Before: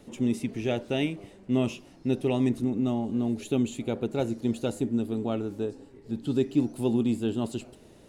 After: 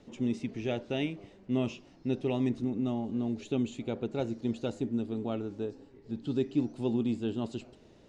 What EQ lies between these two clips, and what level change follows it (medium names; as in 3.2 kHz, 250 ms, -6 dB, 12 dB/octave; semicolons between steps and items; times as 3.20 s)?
low-pass 6.5 kHz 24 dB/octave; -4.5 dB